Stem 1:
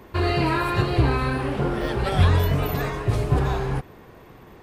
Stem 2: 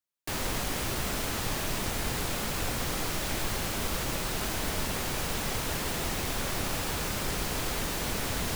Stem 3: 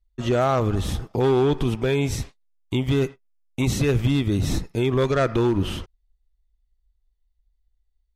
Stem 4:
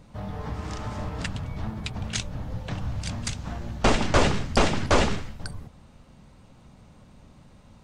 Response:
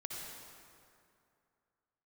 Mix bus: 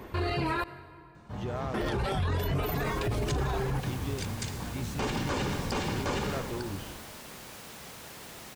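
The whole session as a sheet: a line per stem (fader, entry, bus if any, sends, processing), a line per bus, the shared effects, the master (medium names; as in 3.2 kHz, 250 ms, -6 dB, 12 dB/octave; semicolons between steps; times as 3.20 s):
+1.5 dB, 0.00 s, muted 0.64–1.74 s, send -20 dB, reverb removal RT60 0.51 s
-12.5 dB, 2.35 s, no send, Bessel high-pass 320 Hz, order 2
-16.5 dB, 1.15 s, no send, none
-5.0 dB, 1.15 s, send -5.5 dB, comb of notches 660 Hz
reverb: on, RT60 2.5 s, pre-delay 52 ms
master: peak limiter -22 dBFS, peak gain reduction 17 dB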